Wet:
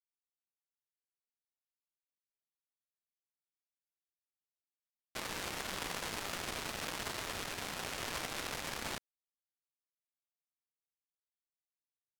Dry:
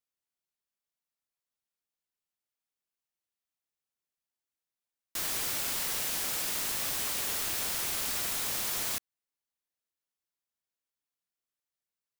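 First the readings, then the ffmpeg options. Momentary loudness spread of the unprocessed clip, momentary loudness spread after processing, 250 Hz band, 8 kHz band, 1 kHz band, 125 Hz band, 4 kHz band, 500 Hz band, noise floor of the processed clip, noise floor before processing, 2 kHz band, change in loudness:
2 LU, 3 LU, +0.5 dB, −12.0 dB, −0.5 dB, 0.0 dB, −6.0 dB, +0.5 dB, below −85 dBFS, below −85 dBFS, −2.0 dB, −9.5 dB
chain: -af "acrusher=bits=3:mix=0:aa=0.5,aemphasis=mode=reproduction:type=75fm,volume=10dB"

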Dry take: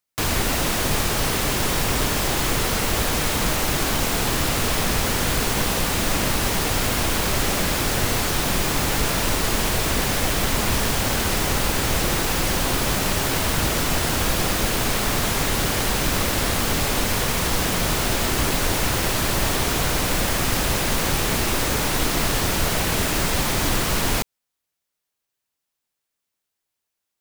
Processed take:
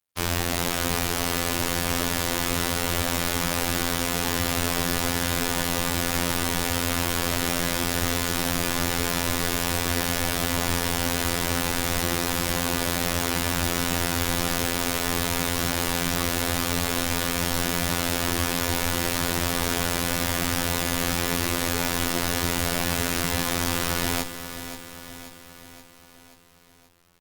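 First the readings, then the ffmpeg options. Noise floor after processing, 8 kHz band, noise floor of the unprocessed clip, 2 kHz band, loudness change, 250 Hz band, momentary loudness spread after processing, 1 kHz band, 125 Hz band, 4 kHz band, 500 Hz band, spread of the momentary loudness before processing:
−51 dBFS, −3.0 dB, −82 dBFS, −2.5 dB, −3.5 dB, −2.0 dB, 0 LU, −3.5 dB, −4.0 dB, −3.0 dB, −3.5 dB, 0 LU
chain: -af "afftfilt=real='hypot(re,im)*cos(PI*b)':imag='0':win_size=2048:overlap=0.75,aecho=1:1:530|1060|1590|2120|2650|3180:0.282|0.158|0.0884|0.0495|0.0277|0.0155" -ar 48000 -c:a libopus -b:a 20k

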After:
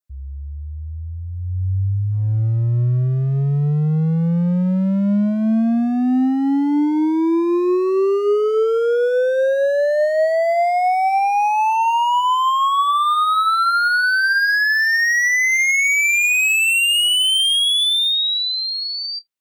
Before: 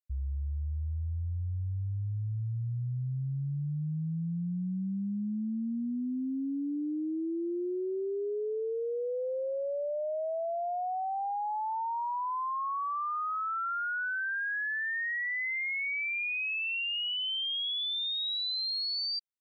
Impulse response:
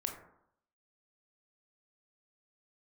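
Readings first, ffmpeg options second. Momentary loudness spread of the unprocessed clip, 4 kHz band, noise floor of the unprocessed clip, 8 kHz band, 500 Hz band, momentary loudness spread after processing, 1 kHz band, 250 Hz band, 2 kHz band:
5 LU, +15.0 dB, −33 dBFS, can't be measured, +16.0 dB, 8 LU, +16.5 dB, +16.0 dB, +16.5 dB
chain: -filter_complex "[0:a]highpass=frequency=100:poles=1,adynamicequalizer=threshold=0.00447:dfrequency=2700:dqfactor=2.3:tfrequency=2700:tqfactor=2.3:attack=5:release=100:ratio=0.375:range=2:mode=boostabove:tftype=bell,dynaudnorm=framelen=150:gausssize=21:maxgain=13dB,volume=21dB,asoftclip=hard,volume=-21dB,asplit=2[link_01][link_02];[1:a]atrim=start_sample=2205,atrim=end_sample=3528[link_03];[link_02][link_03]afir=irnorm=-1:irlink=0,volume=-9.5dB[link_04];[link_01][link_04]amix=inputs=2:normalize=0,volume=3.5dB"

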